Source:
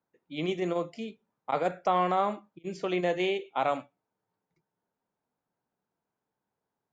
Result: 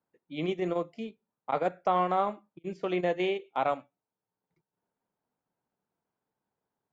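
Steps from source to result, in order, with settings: treble shelf 4.7 kHz -10 dB; transient shaper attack 0 dB, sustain -7 dB

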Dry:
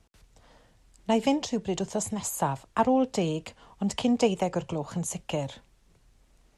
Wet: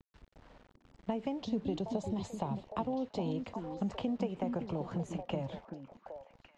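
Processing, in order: 1.37–3.37 s: fifteen-band graphic EQ 100 Hz +5 dB, 1.6 kHz -11 dB, 4 kHz +10 dB; compression 12:1, threshold -30 dBFS, peak gain reduction 13.5 dB; bit crusher 9-bit; tape spacing loss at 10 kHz 29 dB; repeats whose band climbs or falls 384 ms, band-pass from 260 Hz, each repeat 1.4 oct, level -3 dB

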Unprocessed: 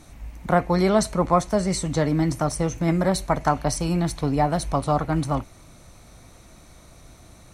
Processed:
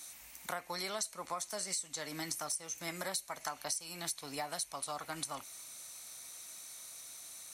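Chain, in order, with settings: differentiator; compression 6:1, threshold -44 dBFS, peak gain reduction 17 dB; trim +8 dB

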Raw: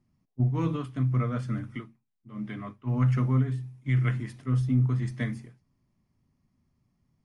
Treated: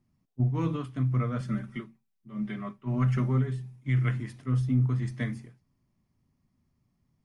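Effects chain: 1.40–3.76 s: comb 5.2 ms, depth 71%; trim -1 dB

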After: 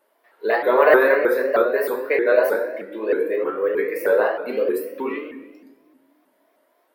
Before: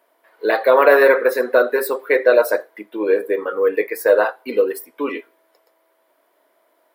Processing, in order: dynamic bell 6.6 kHz, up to -8 dB, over -41 dBFS, Q 0.72; reverberation RT60 1.1 s, pre-delay 5 ms, DRR 1 dB; vibrato with a chosen wave saw up 3.2 Hz, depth 160 cents; trim -5 dB

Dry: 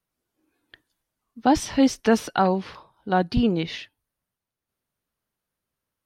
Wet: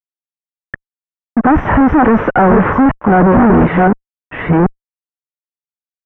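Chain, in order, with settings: chunks repeated in reverse 583 ms, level -6 dB; fuzz box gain 45 dB, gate -49 dBFS; inverse Chebyshev low-pass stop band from 4.1 kHz, stop band 50 dB; trim +6.5 dB

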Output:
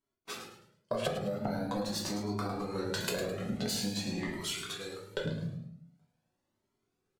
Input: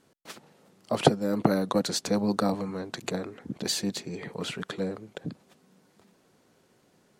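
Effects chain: self-modulated delay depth 0.12 ms; gate -50 dBFS, range -26 dB; 4.27–5.13 s: pre-emphasis filter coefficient 0.9; simulated room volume 65 m³, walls mixed, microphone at 1.1 m; in parallel at +1 dB: gain riding within 4 dB; 2.59–3.57 s: on the sum: treble shelf 5.3 kHz +9 dB; compression 12:1, threshold -24 dBFS, peak gain reduction 18.5 dB; feedback delay 106 ms, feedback 33%, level -9.5 dB; Shepard-style flanger rising 0.45 Hz; trim -2 dB

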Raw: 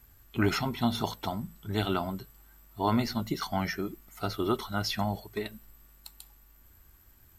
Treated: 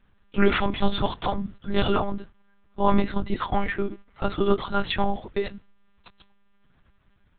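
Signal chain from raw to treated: gate -47 dBFS, range -9 dB; 1.87–4.63 s: treble shelf 2.9 kHz -6 dB; monotone LPC vocoder at 8 kHz 200 Hz; trim +8 dB

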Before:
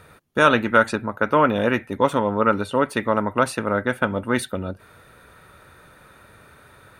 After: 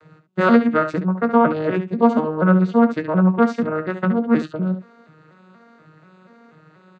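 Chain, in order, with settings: vocoder on a broken chord minor triad, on D#3, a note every 241 ms; early reflections 17 ms -10.5 dB, 70 ms -10 dB; trim +2.5 dB

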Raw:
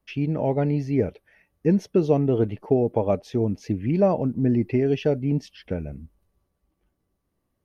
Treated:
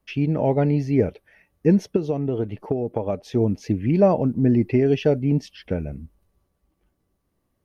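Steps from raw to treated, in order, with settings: 1.96–3.36 s: compression 5:1, threshold -24 dBFS, peak gain reduction 9.5 dB; trim +3 dB

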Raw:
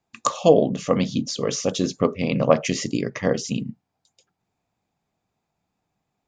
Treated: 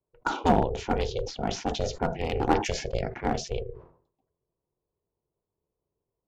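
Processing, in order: level-controlled noise filter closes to 490 Hz, open at -15.5 dBFS; ring modulator 250 Hz; one-sided clip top -16 dBFS; decay stretcher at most 110 dB/s; trim -2.5 dB

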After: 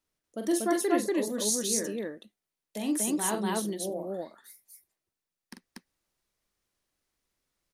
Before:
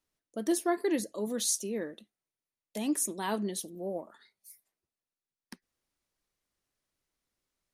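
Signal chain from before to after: loudspeakers at several distances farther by 15 m -6 dB, 82 m 0 dB

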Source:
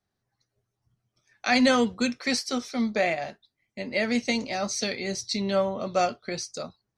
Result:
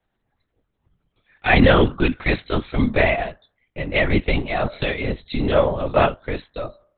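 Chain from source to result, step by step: de-hum 299.7 Hz, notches 6; LPC vocoder at 8 kHz whisper; trim +7.5 dB

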